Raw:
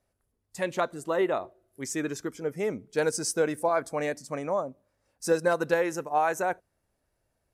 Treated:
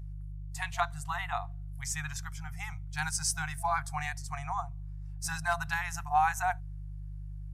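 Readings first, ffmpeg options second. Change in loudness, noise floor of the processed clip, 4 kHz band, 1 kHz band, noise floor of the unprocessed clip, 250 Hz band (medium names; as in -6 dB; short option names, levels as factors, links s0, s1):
-5.0 dB, -41 dBFS, 0.0 dB, -0.5 dB, -78 dBFS, under -10 dB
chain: -af "aeval=exprs='val(0)+0.0112*(sin(2*PI*50*n/s)+sin(2*PI*2*50*n/s)/2+sin(2*PI*3*50*n/s)/3+sin(2*PI*4*50*n/s)/4+sin(2*PI*5*50*n/s)/5)':c=same,afftfilt=real='re*(1-between(b*sr/4096,170,680))':imag='im*(1-between(b*sr/4096,170,680))':win_size=4096:overlap=0.75"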